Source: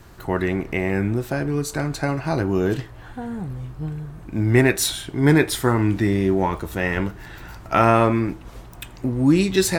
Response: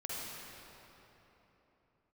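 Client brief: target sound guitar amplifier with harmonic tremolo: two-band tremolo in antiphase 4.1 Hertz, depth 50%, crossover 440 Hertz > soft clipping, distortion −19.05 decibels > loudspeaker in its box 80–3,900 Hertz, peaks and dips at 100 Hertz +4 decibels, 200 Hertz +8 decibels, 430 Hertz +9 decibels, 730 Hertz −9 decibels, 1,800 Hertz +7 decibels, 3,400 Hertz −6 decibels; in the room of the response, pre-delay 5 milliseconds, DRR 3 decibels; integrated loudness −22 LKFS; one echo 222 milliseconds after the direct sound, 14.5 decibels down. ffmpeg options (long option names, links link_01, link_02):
-filter_complex "[0:a]aecho=1:1:222:0.188,asplit=2[link_01][link_02];[1:a]atrim=start_sample=2205,adelay=5[link_03];[link_02][link_03]afir=irnorm=-1:irlink=0,volume=-5dB[link_04];[link_01][link_04]amix=inputs=2:normalize=0,acrossover=split=440[link_05][link_06];[link_05]aeval=exprs='val(0)*(1-0.5/2+0.5/2*cos(2*PI*4.1*n/s))':channel_layout=same[link_07];[link_06]aeval=exprs='val(0)*(1-0.5/2-0.5/2*cos(2*PI*4.1*n/s))':channel_layout=same[link_08];[link_07][link_08]amix=inputs=2:normalize=0,asoftclip=threshold=-9.5dB,highpass=80,equalizer=frequency=100:width_type=q:width=4:gain=4,equalizer=frequency=200:width_type=q:width=4:gain=8,equalizer=frequency=430:width_type=q:width=4:gain=9,equalizer=frequency=730:width_type=q:width=4:gain=-9,equalizer=frequency=1800:width_type=q:width=4:gain=7,equalizer=frequency=3400:width_type=q:width=4:gain=-6,lowpass=frequency=3900:width=0.5412,lowpass=frequency=3900:width=1.3066,volume=-2.5dB"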